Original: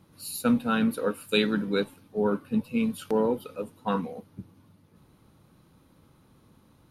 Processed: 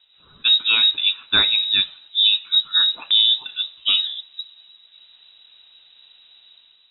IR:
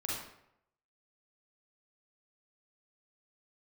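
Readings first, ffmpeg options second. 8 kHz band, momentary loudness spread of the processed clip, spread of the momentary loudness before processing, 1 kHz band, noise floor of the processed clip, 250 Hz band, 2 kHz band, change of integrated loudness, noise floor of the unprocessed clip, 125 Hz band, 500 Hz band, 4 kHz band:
under -35 dB, 12 LU, 13 LU, -4.0 dB, -55 dBFS, under -15 dB, +9.0 dB, +11.5 dB, -61 dBFS, under -10 dB, under -15 dB, +24.5 dB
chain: -filter_complex "[0:a]dynaudnorm=f=130:g=7:m=8dB,asplit=2[a][b];[1:a]atrim=start_sample=2205,asetrate=70560,aresample=44100[c];[b][c]afir=irnorm=-1:irlink=0,volume=-19dB[d];[a][d]amix=inputs=2:normalize=0,lowpass=f=3.4k:t=q:w=0.5098,lowpass=f=3.4k:t=q:w=0.6013,lowpass=f=3.4k:t=q:w=0.9,lowpass=f=3.4k:t=q:w=2.563,afreqshift=-4000"

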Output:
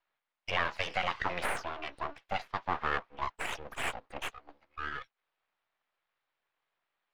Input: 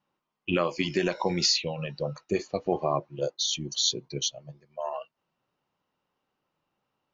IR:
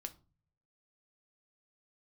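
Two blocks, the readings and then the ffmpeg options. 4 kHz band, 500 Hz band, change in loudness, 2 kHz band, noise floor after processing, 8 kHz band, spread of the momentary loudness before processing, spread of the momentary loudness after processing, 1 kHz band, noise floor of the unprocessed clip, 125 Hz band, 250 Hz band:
-13.0 dB, -11.5 dB, -7.5 dB, +3.0 dB, under -85 dBFS, n/a, 12 LU, 10 LU, 0.0 dB, -82 dBFS, -12.0 dB, -16.0 dB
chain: -filter_complex "[0:a]aeval=exprs='abs(val(0))':c=same,acrossover=split=570 4200:gain=0.2 1 0.0891[a][b][c];[a][b][c]amix=inputs=3:normalize=0,volume=1.5dB"

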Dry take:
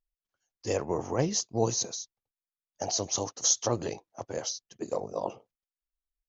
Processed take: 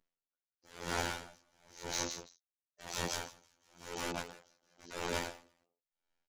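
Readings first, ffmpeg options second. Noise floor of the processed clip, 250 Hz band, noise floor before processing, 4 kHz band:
under -85 dBFS, -11.0 dB, under -85 dBFS, -7.0 dB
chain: -af "lowpass=f=1.8k:p=1,lowshelf=f=130:t=q:w=1.5:g=-13.5,acompressor=threshold=-47dB:ratio=2,aresample=16000,aeval=exprs='(mod(119*val(0)+1,2)-1)/119':c=same,aresample=44100,afftfilt=real='hypot(re,im)*cos(PI*b)':imag='0':win_size=2048:overlap=0.75,asoftclip=type=hard:threshold=-35.5dB,aecho=1:1:172|338:0.531|0.631,aeval=exprs='val(0)*pow(10,-38*(0.5-0.5*cos(2*PI*0.97*n/s))/20)':c=same,volume=17.5dB"

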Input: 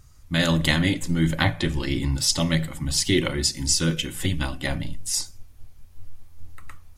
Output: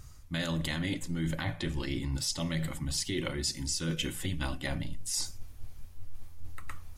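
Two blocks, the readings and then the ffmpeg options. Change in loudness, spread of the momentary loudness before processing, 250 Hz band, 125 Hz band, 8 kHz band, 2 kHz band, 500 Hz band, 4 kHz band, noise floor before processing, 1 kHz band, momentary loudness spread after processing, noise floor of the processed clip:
-10.0 dB, 7 LU, -10.0 dB, -9.5 dB, -9.5 dB, -11.0 dB, -10.5 dB, -10.0 dB, -49 dBFS, -10.5 dB, 17 LU, -49 dBFS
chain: -af "alimiter=limit=-13dB:level=0:latency=1:release=212,areverse,acompressor=threshold=-33dB:ratio=5,areverse,volume=2.5dB"

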